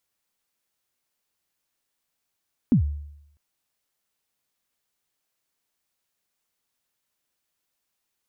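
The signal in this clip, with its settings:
synth kick length 0.65 s, from 280 Hz, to 73 Hz, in 103 ms, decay 0.79 s, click off, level −12 dB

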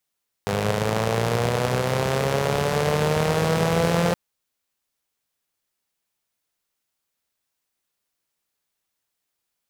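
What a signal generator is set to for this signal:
pulse-train model of a four-cylinder engine, changing speed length 3.67 s, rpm 3,000, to 5,200, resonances 120/170/450 Hz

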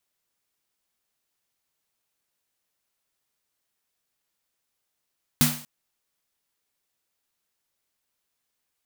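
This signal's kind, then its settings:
synth snare length 0.24 s, tones 150 Hz, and 240 Hz, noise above 530 Hz, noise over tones 0 dB, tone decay 0.38 s, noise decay 0.47 s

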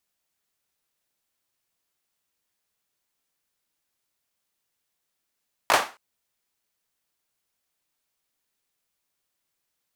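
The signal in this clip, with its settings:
synth clap length 0.27 s, bursts 3, apart 18 ms, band 960 Hz, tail 0.31 s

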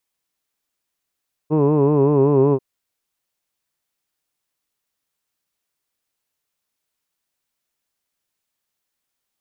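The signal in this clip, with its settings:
vowel from formants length 1.09 s, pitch 149 Hz, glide −1.5 semitones, F1 390 Hz, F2 1,000 Hz, F3 2,600 Hz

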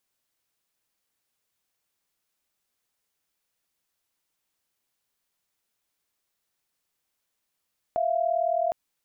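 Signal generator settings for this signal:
held notes E5/F5 sine, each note −25 dBFS 0.76 s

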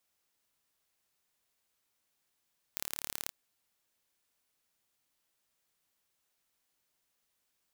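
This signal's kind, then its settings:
impulse train 36.4 per second, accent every 2, −7.5 dBFS 0.54 s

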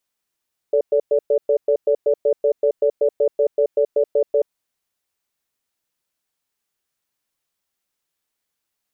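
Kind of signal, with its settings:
tone pair in a cadence 439 Hz, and 575 Hz, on 0.08 s, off 0.11 s, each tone −16 dBFS 3.76 s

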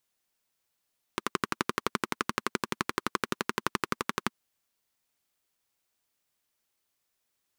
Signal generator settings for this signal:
pulse-train model of a single-cylinder engine, steady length 3.12 s, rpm 1,400, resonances 230/360/1,100 Hz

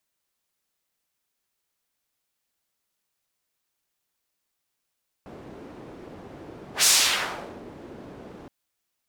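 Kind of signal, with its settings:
pass-by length 3.22 s, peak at 0:01.58, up 0.11 s, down 0.81 s, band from 340 Hz, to 6,800 Hz, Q 0.98, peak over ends 25.5 dB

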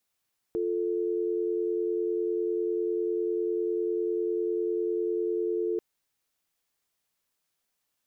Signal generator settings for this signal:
call progress tone dial tone, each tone −28.5 dBFS 5.24 s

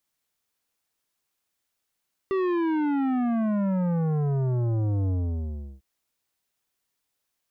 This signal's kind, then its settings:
bass drop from 390 Hz, over 3.50 s, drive 12 dB, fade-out 0.72 s, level −23.5 dB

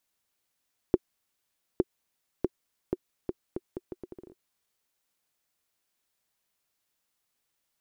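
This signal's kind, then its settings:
bouncing ball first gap 0.86 s, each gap 0.75, 364 Hz, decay 37 ms −8.5 dBFS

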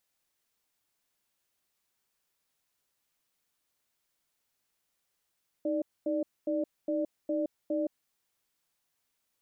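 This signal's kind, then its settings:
tone pair in a cadence 312 Hz, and 590 Hz, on 0.17 s, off 0.24 s, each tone −30 dBFS 2.42 s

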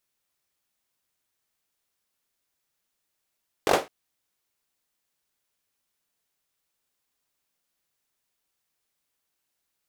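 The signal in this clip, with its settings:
synth clap length 0.21 s, apart 21 ms, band 530 Hz, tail 0.24 s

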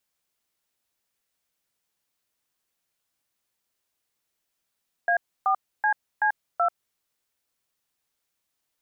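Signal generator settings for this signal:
touch tones "A4CC2", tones 89 ms, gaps 290 ms, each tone −21.5 dBFS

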